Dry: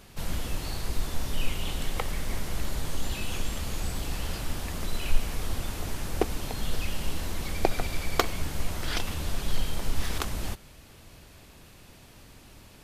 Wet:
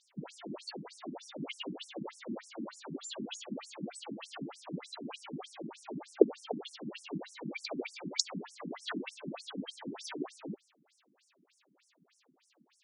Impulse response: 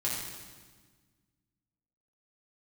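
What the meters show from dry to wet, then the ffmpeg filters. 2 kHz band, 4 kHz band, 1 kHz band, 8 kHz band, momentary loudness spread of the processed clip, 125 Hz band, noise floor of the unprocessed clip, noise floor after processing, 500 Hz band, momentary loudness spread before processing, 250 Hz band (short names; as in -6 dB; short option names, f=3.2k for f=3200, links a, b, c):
-10.0 dB, -6.0 dB, -10.5 dB, -8.0 dB, 11 LU, -15.5 dB, -52 dBFS, -73 dBFS, 0.0 dB, 21 LU, -1.0 dB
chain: -af "afftdn=nr=15:nf=-38,afftfilt=real='re*between(b*sr/1024,230*pow(7600/230,0.5+0.5*sin(2*PI*3.3*pts/sr))/1.41,230*pow(7600/230,0.5+0.5*sin(2*PI*3.3*pts/sr))*1.41)':imag='im*between(b*sr/1024,230*pow(7600/230,0.5+0.5*sin(2*PI*3.3*pts/sr))/1.41,230*pow(7600/230,0.5+0.5*sin(2*PI*3.3*pts/sr))*1.41)':win_size=1024:overlap=0.75,volume=6.5dB"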